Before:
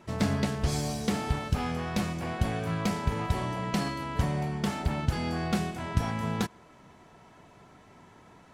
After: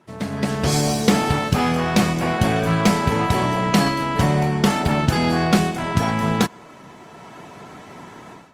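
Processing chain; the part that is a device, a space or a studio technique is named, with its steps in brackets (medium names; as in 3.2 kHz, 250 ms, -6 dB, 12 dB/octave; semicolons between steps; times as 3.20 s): video call (high-pass 130 Hz 12 dB/octave; level rider gain up to 16.5 dB; trim -1 dB; Opus 24 kbps 48 kHz)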